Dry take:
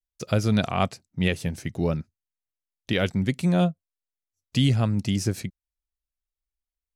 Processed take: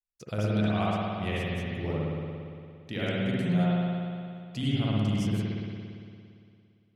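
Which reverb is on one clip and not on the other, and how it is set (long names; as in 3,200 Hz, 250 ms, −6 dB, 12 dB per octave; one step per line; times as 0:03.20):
spring reverb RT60 2.4 s, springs 57 ms, chirp 55 ms, DRR −8 dB
level −12.5 dB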